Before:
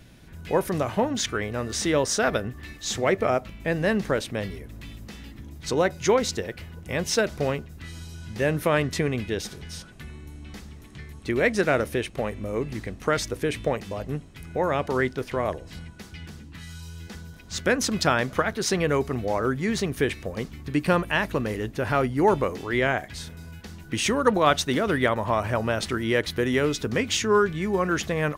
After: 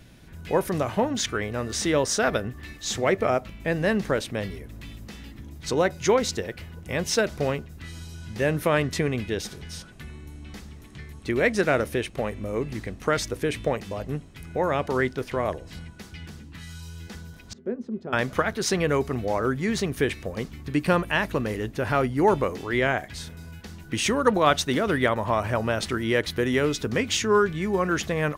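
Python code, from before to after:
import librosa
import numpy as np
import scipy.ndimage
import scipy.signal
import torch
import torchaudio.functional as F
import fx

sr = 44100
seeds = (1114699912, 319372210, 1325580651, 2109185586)

y = fx.double_bandpass(x, sr, hz=300.0, octaves=0.7, at=(17.53, 18.13))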